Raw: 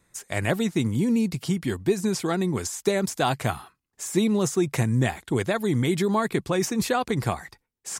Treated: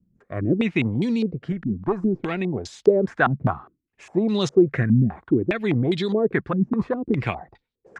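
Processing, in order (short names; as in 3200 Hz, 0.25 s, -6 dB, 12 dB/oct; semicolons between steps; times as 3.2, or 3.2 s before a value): rotary speaker horn 0.85 Hz, later 6.7 Hz, at 5.13; 1.52–2.41 tube stage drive 18 dB, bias 0.45; stepped low-pass 4.9 Hz 210–3800 Hz; gain +1.5 dB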